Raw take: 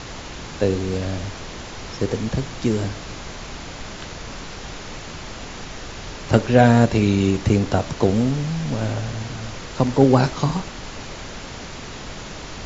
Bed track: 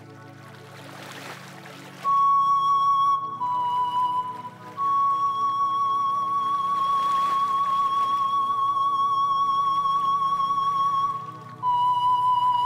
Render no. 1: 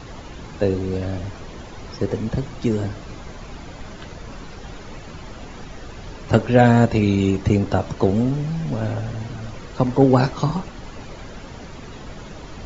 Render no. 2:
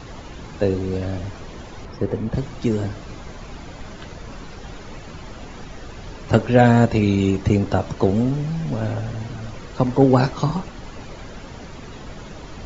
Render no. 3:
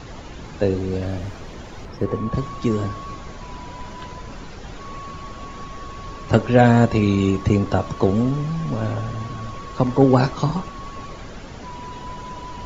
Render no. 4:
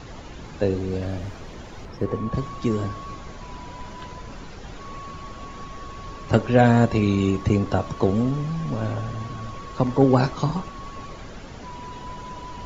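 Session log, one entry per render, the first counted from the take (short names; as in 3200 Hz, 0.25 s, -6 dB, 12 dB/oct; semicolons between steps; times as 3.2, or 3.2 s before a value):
denoiser 10 dB, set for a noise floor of -35 dBFS
1.85–2.34 high shelf 3300 Hz -11.5 dB
add bed track -16 dB
gain -2.5 dB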